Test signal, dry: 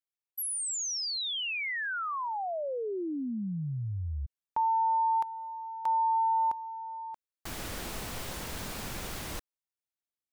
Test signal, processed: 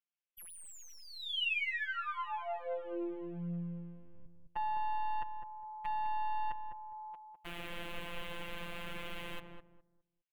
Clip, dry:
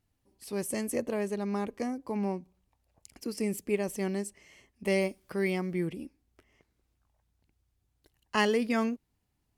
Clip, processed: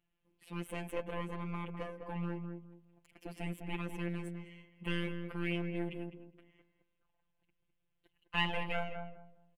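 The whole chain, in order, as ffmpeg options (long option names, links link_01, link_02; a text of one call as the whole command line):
ffmpeg -i in.wav -filter_complex "[0:a]aeval=exprs='clip(val(0),-1,0.02)':channel_layout=same,afftfilt=real='hypot(re,im)*cos(PI*b)':imag='0':win_size=1024:overlap=0.75,highshelf=frequency=3900:width_type=q:width=3:gain=-10.5,asplit=2[link_01][link_02];[link_02]adelay=205,lowpass=frequency=890:poles=1,volume=-4.5dB,asplit=2[link_03][link_04];[link_04]adelay=205,lowpass=frequency=890:poles=1,volume=0.27,asplit=2[link_05][link_06];[link_06]adelay=205,lowpass=frequency=890:poles=1,volume=0.27,asplit=2[link_07][link_08];[link_08]adelay=205,lowpass=frequency=890:poles=1,volume=0.27[link_09];[link_03][link_05][link_07][link_09]amix=inputs=4:normalize=0[link_10];[link_01][link_10]amix=inputs=2:normalize=0,volume=-2dB" out.wav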